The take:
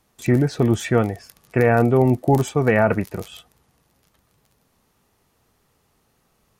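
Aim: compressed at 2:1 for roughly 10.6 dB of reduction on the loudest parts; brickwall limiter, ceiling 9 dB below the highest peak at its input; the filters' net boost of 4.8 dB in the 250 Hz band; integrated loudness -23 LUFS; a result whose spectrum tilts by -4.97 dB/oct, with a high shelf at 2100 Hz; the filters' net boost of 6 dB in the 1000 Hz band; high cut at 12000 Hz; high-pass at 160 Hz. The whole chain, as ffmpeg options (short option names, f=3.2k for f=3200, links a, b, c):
-af "highpass=160,lowpass=12k,equalizer=f=250:t=o:g=6,equalizer=f=1k:t=o:g=7,highshelf=f=2.1k:g=6,acompressor=threshold=-28dB:ratio=2,volume=7.5dB,alimiter=limit=-11dB:level=0:latency=1"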